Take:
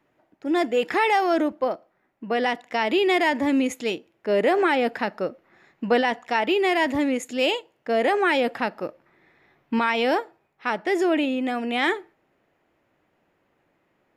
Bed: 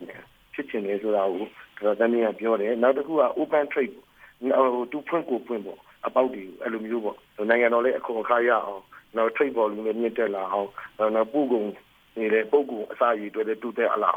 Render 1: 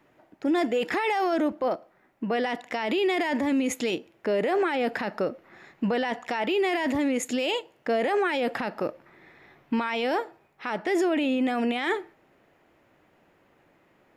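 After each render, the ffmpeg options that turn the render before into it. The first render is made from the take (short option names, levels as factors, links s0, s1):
-filter_complex "[0:a]asplit=2[s0][s1];[s1]acompressor=threshold=0.0355:ratio=6,volume=1[s2];[s0][s2]amix=inputs=2:normalize=0,alimiter=limit=0.126:level=0:latency=1:release=15"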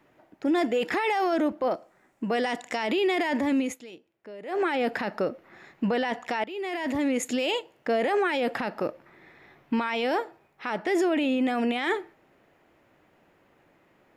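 -filter_complex "[0:a]asettb=1/sr,asplit=3[s0][s1][s2];[s0]atrim=end=1.744[s3];[s1]atrim=start=1.74:end=2.87,asetpts=PTS-STARTPTS,afade=t=in:d=0.004:c=qsin,afade=t=out:st=1.126:d=0.004:c=qsin,equalizer=f=7700:t=o:w=0.85:g=12[s4];[s2]atrim=start=2.866[s5];[s3][s4]acrossfade=d=0.004:c1=hsin:c2=qsin[s6];[s6][s5]acrossfade=d=0.004:c1=qsin:c2=hsin,asplit=4[s7][s8][s9][s10];[s7]atrim=end=3.8,asetpts=PTS-STARTPTS,afade=t=out:st=3.59:d=0.21:silence=0.141254[s11];[s8]atrim=start=3.8:end=4.44,asetpts=PTS-STARTPTS,volume=0.141[s12];[s9]atrim=start=4.44:end=6.44,asetpts=PTS-STARTPTS,afade=t=in:d=0.21:silence=0.141254,afade=t=out:st=1.996:d=0.004:c=hsin:silence=0.149624[s13];[s10]atrim=start=6.44,asetpts=PTS-STARTPTS,afade=t=in:d=0.65:silence=0.149624[s14];[s11][s12][s13][s14]concat=n=4:v=0:a=1"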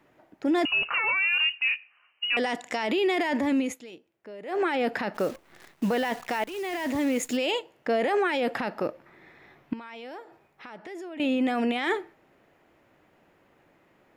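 -filter_complex "[0:a]asettb=1/sr,asplit=3[s0][s1][s2];[s0]atrim=end=0.654[s3];[s1]atrim=start=0.65:end=2.37,asetpts=PTS-STARTPTS,afade=t=in:d=0.004:c=qsin,afade=t=out:st=1.716:d=0.004:c=qsin,lowpass=f=2600:t=q:w=0.5098,lowpass=f=2600:t=q:w=0.6013,lowpass=f=2600:t=q:w=0.9,lowpass=f=2600:t=q:w=2.563,afreqshift=-3100[s4];[s2]atrim=start=2.366[s5];[s3][s4]acrossfade=d=0.004:c1=hsin:c2=qsin[s6];[s6][s5]acrossfade=d=0.004:c1=qsin:c2=hsin,asplit=3[s7][s8][s9];[s7]afade=t=out:st=5.14:d=0.02[s10];[s8]acrusher=bits=8:dc=4:mix=0:aa=0.000001,afade=t=in:st=5.14:d=0.02,afade=t=out:st=7.36:d=0.02[s11];[s9]afade=t=in:st=7.36:d=0.02[s12];[s10][s11][s12]amix=inputs=3:normalize=0,asettb=1/sr,asplit=3[s13][s14][s15];[s13]atrim=end=9.734[s16];[s14]atrim=start=9.73:end=11.2,asetpts=PTS-STARTPTS,afade=t=in:d=0.004:c=qsin,afade=t=out:st=1.466:d=0.004:c=qsin,acompressor=threshold=0.00562:ratio=2.5:attack=3.2:release=140:knee=1:detection=peak[s17];[s15]atrim=start=11.196[s18];[s16][s17]acrossfade=d=0.004:c1=hsin:c2=qsin[s19];[s19][s18]acrossfade=d=0.004:c1=qsin:c2=hsin"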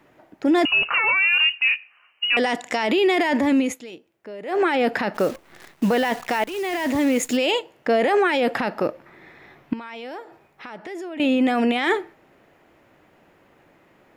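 -af "volume=2"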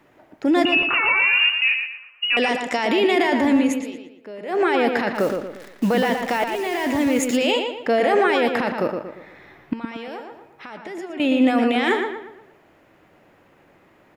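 -filter_complex "[0:a]asplit=2[s0][s1];[s1]adelay=117,lowpass=f=3700:p=1,volume=0.562,asplit=2[s2][s3];[s3]adelay=117,lowpass=f=3700:p=1,volume=0.42,asplit=2[s4][s5];[s5]adelay=117,lowpass=f=3700:p=1,volume=0.42,asplit=2[s6][s7];[s7]adelay=117,lowpass=f=3700:p=1,volume=0.42,asplit=2[s8][s9];[s9]adelay=117,lowpass=f=3700:p=1,volume=0.42[s10];[s0][s2][s4][s6][s8][s10]amix=inputs=6:normalize=0"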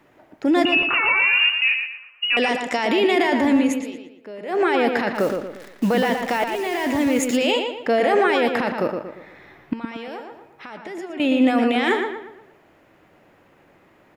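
-af anull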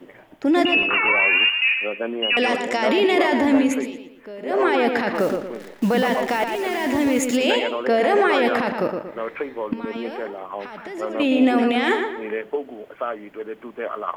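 -filter_complex "[1:a]volume=0.531[s0];[0:a][s0]amix=inputs=2:normalize=0"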